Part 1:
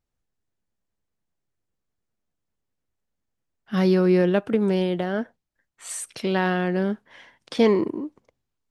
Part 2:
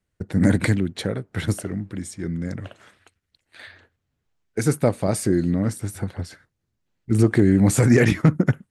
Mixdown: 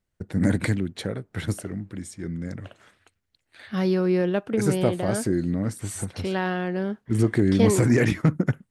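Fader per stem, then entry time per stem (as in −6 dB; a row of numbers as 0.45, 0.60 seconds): −3.5, −4.0 decibels; 0.00, 0.00 seconds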